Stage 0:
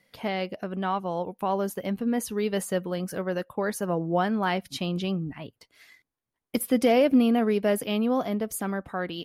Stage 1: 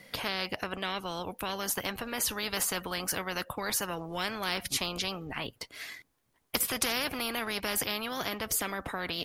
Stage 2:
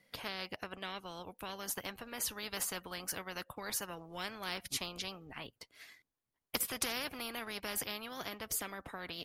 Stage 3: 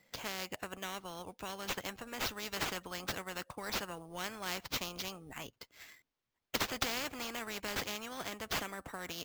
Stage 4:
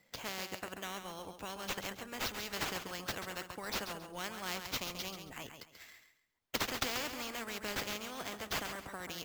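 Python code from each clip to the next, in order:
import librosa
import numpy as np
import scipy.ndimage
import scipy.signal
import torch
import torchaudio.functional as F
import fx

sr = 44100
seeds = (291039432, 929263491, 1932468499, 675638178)

y1 = fx.spectral_comp(x, sr, ratio=4.0)
y1 = y1 * librosa.db_to_amplitude(-1.5)
y2 = fx.upward_expand(y1, sr, threshold_db=-49.0, expansion=1.5)
y2 = y2 * librosa.db_to_amplitude(-5.0)
y3 = fx.sample_hold(y2, sr, seeds[0], rate_hz=9600.0, jitter_pct=0)
y3 = y3 * librosa.db_to_amplitude(1.0)
y4 = fx.echo_feedback(y3, sr, ms=136, feedback_pct=27, wet_db=-8.0)
y4 = y4 * librosa.db_to_amplitude(-1.0)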